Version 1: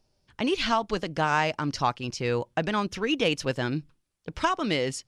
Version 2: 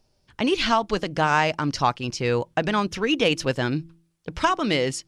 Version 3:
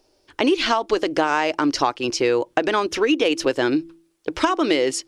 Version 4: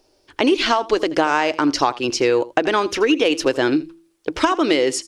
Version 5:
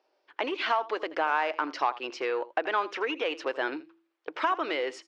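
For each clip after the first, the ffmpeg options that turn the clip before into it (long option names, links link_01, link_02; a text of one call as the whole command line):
ffmpeg -i in.wav -af "bandreject=frequency=165.9:width_type=h:width=4,bandreject=frequency=331.8:width_type=h:width=4,volume=4dB" out.wav
ffmpeg -i in.wav -af "lowshelf=frequency=240:width_type=q:width=3:gain=-9.5,acompressor=threshold=-22dB:ratio=6,volume=6.5dB" out.wav
ffmpeg -i in.wav -af "aecho=1:1:81:0.119,volume=2dB" out.wav
ffmpeg -i in.wav -af "asoftclip=type=tanh:threshold=-7.5dB,highpass=660,lowpass=2300,volume=-5dB" out.wav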